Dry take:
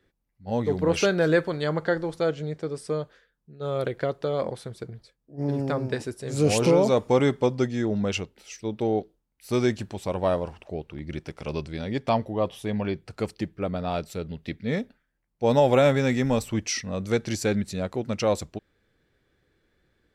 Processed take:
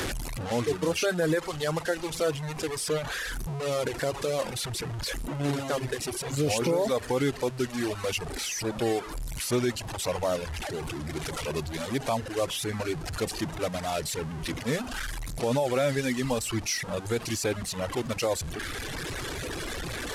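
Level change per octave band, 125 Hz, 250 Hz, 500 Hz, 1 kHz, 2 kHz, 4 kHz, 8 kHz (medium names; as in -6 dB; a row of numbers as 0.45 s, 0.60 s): -3.5 dB, -4.5 dB, -4.0 dB, -2.5 dB, +0.5 dB, +3.0 dB, +4.5 dB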